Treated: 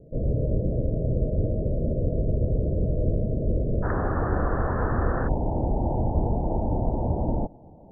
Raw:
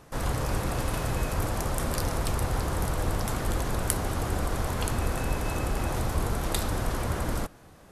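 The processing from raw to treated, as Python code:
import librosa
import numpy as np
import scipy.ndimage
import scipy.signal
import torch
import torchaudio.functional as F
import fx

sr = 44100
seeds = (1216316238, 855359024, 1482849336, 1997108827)

y = fx.cheby_ripple(x, sr, hz=fx.steps((0.0, 640.0), (3.82, 1800.0), (5.27, 920.0)), ripple_db=3)
y = y * librosa.db_to_amplitude(6.5)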